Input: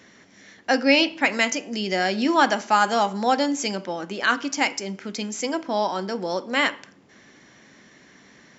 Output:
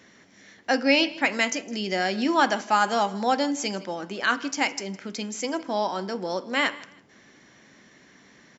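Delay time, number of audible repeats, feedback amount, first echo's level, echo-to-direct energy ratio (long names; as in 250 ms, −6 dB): 160 ms, 2, 28%, −20.5 dB, −20.0 dB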